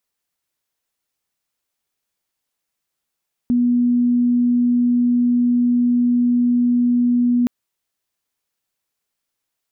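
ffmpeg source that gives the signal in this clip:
ffmpeg -f lavfi -i "sine=frequency=243:duration=3.97:sample_rate=44100,volume=5.06dB" out.wav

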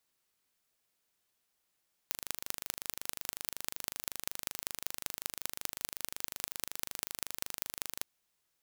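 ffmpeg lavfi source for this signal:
ffmpeg -f lavfi -i "aevalsrc='0.531*eq(mod(n,1736),0)*(0.5+0.5*eq(mod(n,8680),0))':duration=5.92:sample_rate=44100" out.wav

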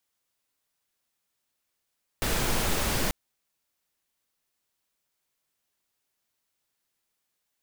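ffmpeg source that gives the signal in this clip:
ffmpeg -f lavfi -i "anoisesrc=color=pink:amplitude=0.243:duration=0.89:sample_rate=44100:seed=1" out.wav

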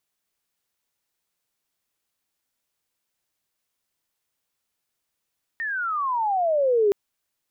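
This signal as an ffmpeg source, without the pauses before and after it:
ffmpeg -f lavfi -i "aevalsrc='pow(10,(-15.5+10*(t/1.32-1))/20)*sin(2*PI*1860*1.32/(-27*log(2)/12)*(exp(-27*log(2)/12*t/1.32)-1))':duration=1.32:sample_rate=44100" out.wav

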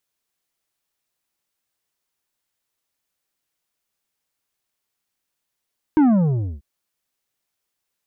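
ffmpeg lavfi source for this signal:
ffmpeg -f lavfi -i "aevalsrc='0.251*clip((0.64-t)/0.6,0,1)*tanh(2.51*sin(2*PI*320*0.64/log(65/320)*(exp(log(65/320)*t/0.64)-1)))/tanh(2.51)':duration=0.64:sample_rate=44100" out.wav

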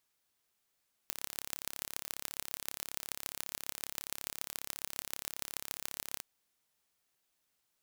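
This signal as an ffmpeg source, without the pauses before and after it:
ffmpeg -f lavfi -i "aevalsrc='0.398*eq(mod(n,1271),0)*(0.5+0.5*eq(mod(n,6355),0))':duration=5.12:sample_rate=44100" out.wav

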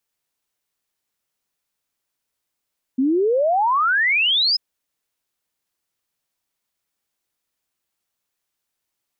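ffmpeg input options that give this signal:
ffmpeg -f lavfi -i "aevalsrc='0.178*clip(min(t,1.59-t)/0.01,0,1)*sin(2*PI*250*1.59/log(5200/250)*(exp(log(5200/250)*t/1.59)-1))':duration=1.59:sample_rate=44100" out.wav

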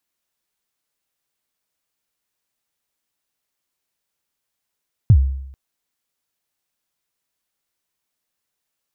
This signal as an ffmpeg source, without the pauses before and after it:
ffmpeg -f lavfi -i "aevalsrc='0.596*pow(10,-3*t/0.78)*sin(2*PI*(130*0.068/log(67/130)*(exp(log(67/130)*min(t,0.068)/0.068)-1)+67*max(t-0.068,0)))':duration=0.44:sample_rate=44100" out.wav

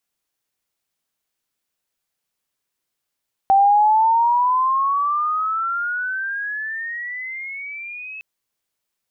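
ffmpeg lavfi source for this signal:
ffmpeg -f lavfi -i "aevalsrc='pow(10,(-10-21*t/4.71)/20)*sin(2*PI*775*4.71/(21*log(2)/12)*(exp(21*log(2)/12*t/4.71)-1))':duration=4.71:sample_rate=44100" out.wav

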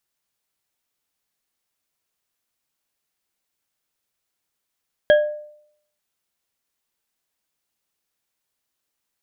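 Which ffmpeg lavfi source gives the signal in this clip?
ffmpeg -f lavfi -i "aevalsrc='0.398*pow(10,-3*t/0.68)*sin(2*PI*599*t)+0.168*pow(10,-3*t/0.334)*sin(2*PI*1651.4*t)+0.0708*pow(10,-3*t/0.209)*sin(2*PI*3237*t)':duration=0.89:sample_rate=44100" out.wav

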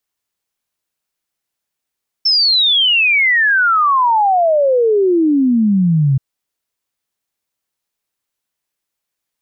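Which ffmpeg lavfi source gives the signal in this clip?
ffmpeg -f lavfi -i "aevalsrc='0.335*clip(min(t,3.93-t)/0.01,0,1)*sin(2*PI*5400*3.93/log(130/5400)*(exp(log(130/5400)*t/3.93)-1))':duration=3.93:sample_rate=44100" out.wav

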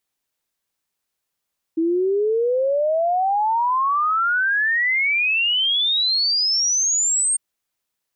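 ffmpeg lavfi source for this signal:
ffmpeg -f lavfi -i "aevalsrc='0.15*clip(min(t,5.6-t)/0.01,0,1)*sin(2*PI*320*5.6/log(8700/320)*(exp(log(8700/320)*t/5.6)-1))':duration=5.6:sample_rate=44100" out.wav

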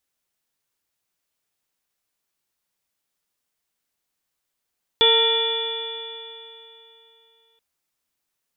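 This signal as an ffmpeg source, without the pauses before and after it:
ffmpeg -f lavfi -i "aevalsrc='0.126*pow(10,-3*t/3.08)*sin(2*PI*452.88*t)+0.0668*pow(10,-3*t/3.08)*sin(2*PI*911.02*t)+0.0299*pow(10,-3*t/3.08)*sin(2*PI*1379.59*t)+0.0335*pow(10,-3*t/3.08)*sin(2*PI*1863.56*t)+0.0398*pow(10,-3*t/3.08)*sin(2*PI*2367.61*t)+0.0376*pow(10,-3*t/3.08)*sin(2*PI*2896.13*t)+0.224*pow(10,-3*t/3.08)*sin(2*PI*3453.11*t)':duration=2.58:sample_rate=44100" out.wav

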